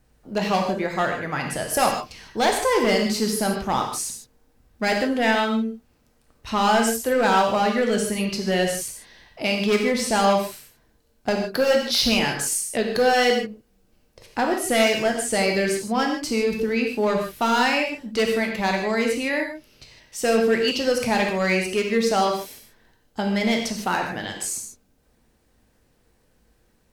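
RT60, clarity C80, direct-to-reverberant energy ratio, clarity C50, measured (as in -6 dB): no single decay rate, 7.0 dB, 1.5 dB, 4.5 dB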